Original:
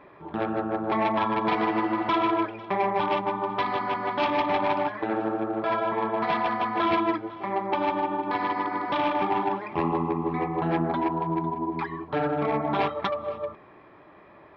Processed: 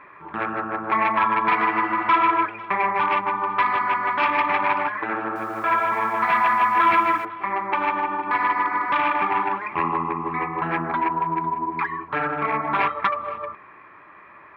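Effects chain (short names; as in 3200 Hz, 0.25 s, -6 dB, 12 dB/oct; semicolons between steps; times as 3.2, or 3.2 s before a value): band shelf 1600 Hz +13 dB; 5.22–7.25 lo-fi delay 0.137 s, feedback 55%, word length 7-bit, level -9 dB; gain -3.5 dB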